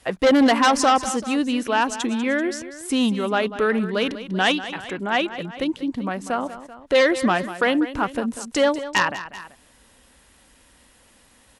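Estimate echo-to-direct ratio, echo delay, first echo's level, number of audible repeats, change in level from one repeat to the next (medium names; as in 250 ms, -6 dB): -12.0 dB, 193 ms, -13.5 dB, 2, -4.5 dB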